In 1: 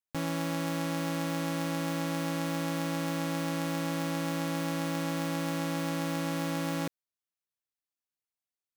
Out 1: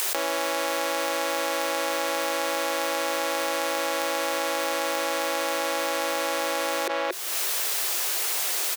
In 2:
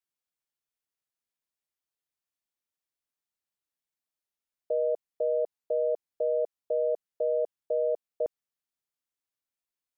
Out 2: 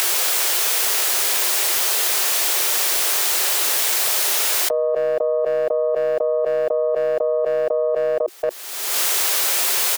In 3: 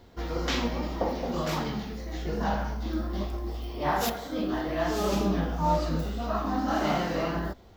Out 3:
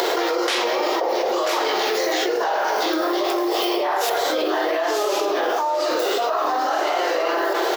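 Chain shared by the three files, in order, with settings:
tracing distortion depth 0.068 ms; Chebyshev high-pass 360 Hz, order 5; upward compressor, threshold -31 dBFS; speakerphone echo 230 ms, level -19 dB; level flattener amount 100%; peak normalisation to -6 dBFS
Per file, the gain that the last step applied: +7.0 dB, +7.0 dB, +2.5 dB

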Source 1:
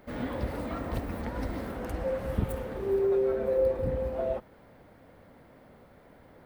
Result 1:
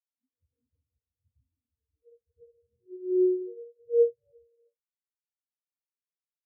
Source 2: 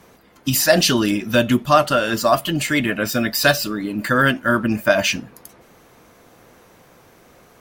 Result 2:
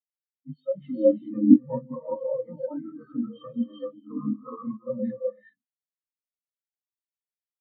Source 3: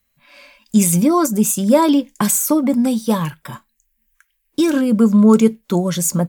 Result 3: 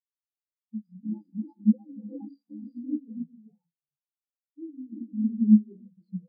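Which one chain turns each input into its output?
frequency axis rescaled in octaves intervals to 85%; compression 16:1, threshold -17 dBFS; resampled via 11.025 kHz; gated-style reverb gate 450 ms rising, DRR -1.5 dB; spectral contrast expander 4:1; normalise loudness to -27 LUFS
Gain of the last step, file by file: +0.5 dB, +3.5 dB, -1.5 dB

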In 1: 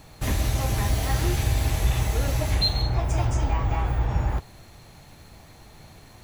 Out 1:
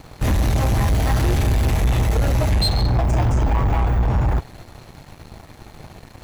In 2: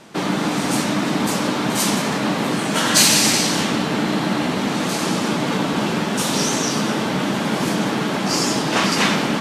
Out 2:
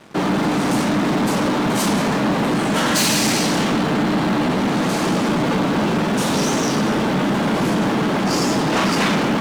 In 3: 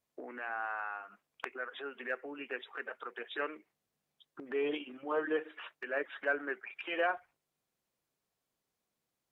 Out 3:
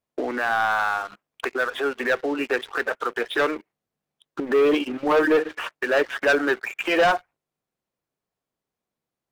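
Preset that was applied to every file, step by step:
treble shelf 2.3 kHz -8 dB; waveshaping leveller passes 3; peak normalisation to -12 dBFS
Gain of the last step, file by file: -0.5 dB, -5.5 dB, +8.0 dB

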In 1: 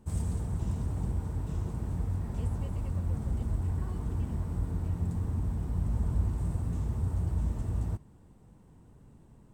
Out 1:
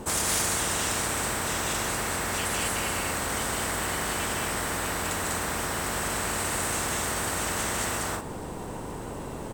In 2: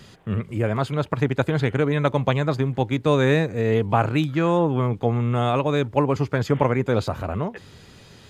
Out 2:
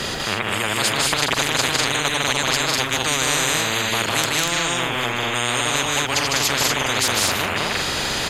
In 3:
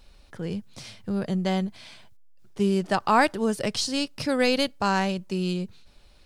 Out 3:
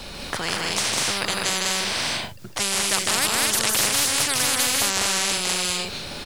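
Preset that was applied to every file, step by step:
loudspeakers at several distances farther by 53 m -4 dB, 68 m -1 dB, 82 m -6 dB; spectrum-flattening compressor 10:1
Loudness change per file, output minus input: +5.5 LU, +3.0 LU, +5.0 LU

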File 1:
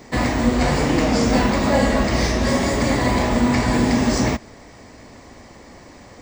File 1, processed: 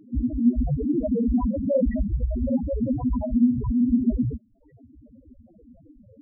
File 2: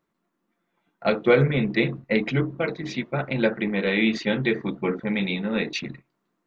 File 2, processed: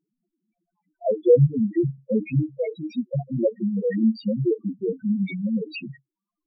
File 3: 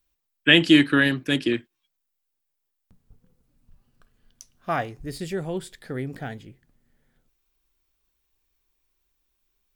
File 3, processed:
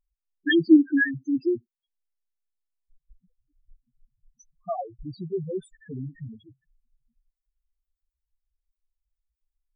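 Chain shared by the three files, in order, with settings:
reverb removal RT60 0.73 s; loudest bins only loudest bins 2; normalise loudness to -24 LUFS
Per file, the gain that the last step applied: +3.0 dB, +5.5 dB, +3.0 dB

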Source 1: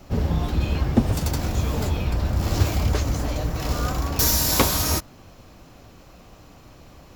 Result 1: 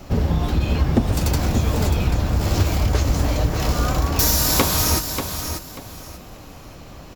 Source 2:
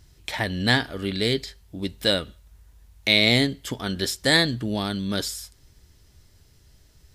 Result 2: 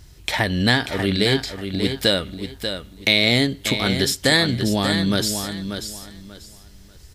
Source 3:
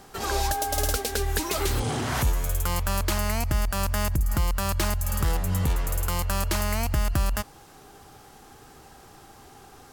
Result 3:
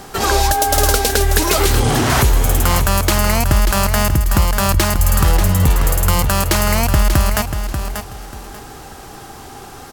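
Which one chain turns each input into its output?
compression 2:1, threshold -25 dBFS; on a send: feedback delay 588 ms, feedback 24%, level -8 dB; on the sum: peak normalisation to -1.5 dBFS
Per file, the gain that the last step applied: +6.5 dB, +7.5 dB, +13.5 dB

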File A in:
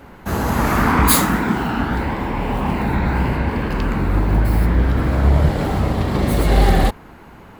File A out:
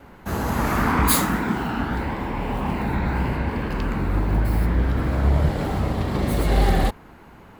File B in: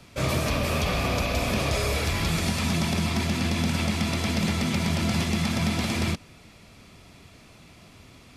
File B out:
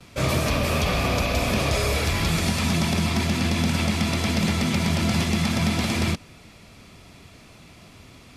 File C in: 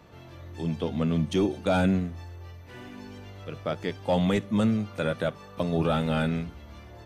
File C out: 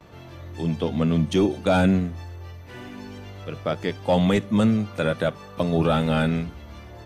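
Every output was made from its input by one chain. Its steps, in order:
gate with hold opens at -46 dBFS; normalise loudness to -23 LUFS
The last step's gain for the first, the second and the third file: -4.5 dB, +2.5 dB, +4.5 dB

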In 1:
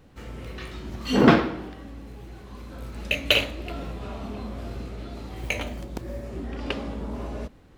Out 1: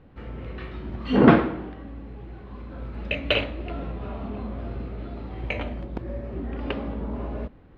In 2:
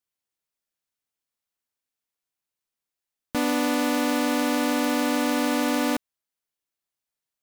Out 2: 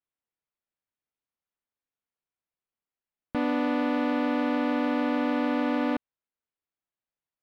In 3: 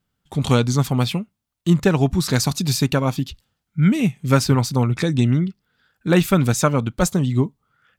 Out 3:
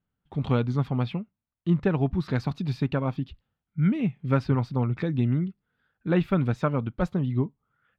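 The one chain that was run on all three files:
distance through air 390 m; normalise loudness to -27 LUFS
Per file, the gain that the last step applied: +2.0 dB, -1.5 dB, -6.5 dB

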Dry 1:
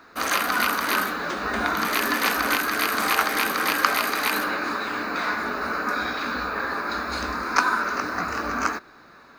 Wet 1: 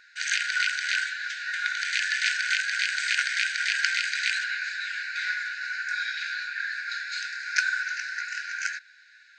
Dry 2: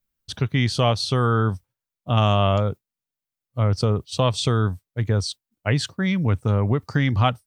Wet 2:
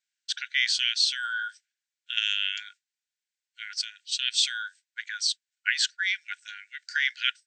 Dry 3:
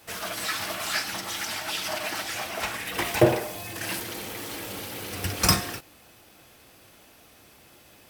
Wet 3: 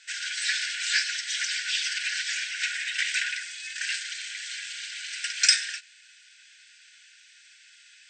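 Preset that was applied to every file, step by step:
brick-wall FIR band-pass 1.4–8.5 kHz; normalise loudness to -27 LUFS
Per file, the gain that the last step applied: -0.5 dB, +4.0 dB, +4.0 dB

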